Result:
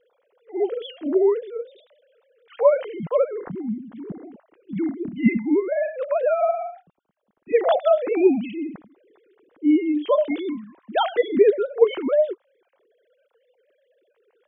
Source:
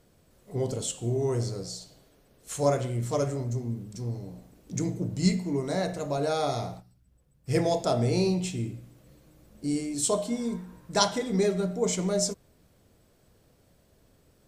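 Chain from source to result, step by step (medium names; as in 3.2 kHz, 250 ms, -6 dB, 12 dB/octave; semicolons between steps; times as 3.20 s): formants replaced by sine waves; trim +6.5 dB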